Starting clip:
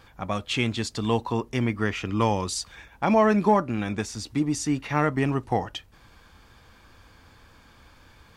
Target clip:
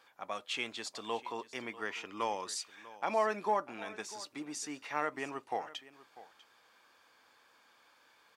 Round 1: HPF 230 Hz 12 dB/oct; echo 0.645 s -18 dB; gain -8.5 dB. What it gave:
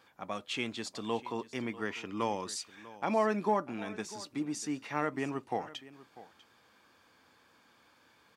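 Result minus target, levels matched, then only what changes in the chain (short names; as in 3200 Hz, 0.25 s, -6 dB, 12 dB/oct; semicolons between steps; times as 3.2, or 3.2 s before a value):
250 Hz band +7.0 dB
change: HPF 500 Hz 12 dB/oct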